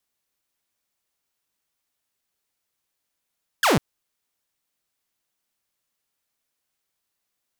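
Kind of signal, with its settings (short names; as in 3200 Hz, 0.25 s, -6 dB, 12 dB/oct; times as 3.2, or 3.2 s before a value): laser zap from 1800 Hz, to 120 Hz, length 0.15 s saw, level -13 dB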